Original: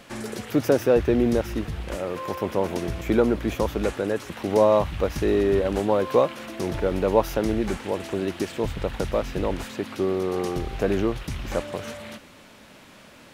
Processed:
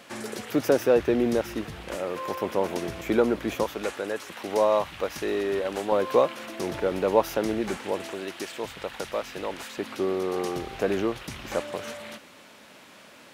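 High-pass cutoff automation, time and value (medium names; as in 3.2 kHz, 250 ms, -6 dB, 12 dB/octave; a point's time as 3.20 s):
high-pass 6 dB/octave
280 Hz
from 3.64 s 690 Hz
from 5.92 s 300 Hz
from 8.12 s 860 Hz
from 9.78 s 310 Hz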